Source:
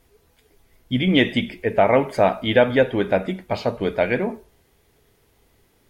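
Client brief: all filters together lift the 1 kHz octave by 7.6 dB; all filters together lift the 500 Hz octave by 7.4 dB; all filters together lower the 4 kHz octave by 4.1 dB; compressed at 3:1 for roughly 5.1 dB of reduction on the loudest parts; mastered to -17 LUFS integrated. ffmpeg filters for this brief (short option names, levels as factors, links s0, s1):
-af "equalizer=f=500:t=o:g=6.5,equalizer=f=1000:t=o:g=8,equalizer=f=4000:t=o:g=-6.5,acompressor=threshold=0.316:ratio=3,volume=1.06"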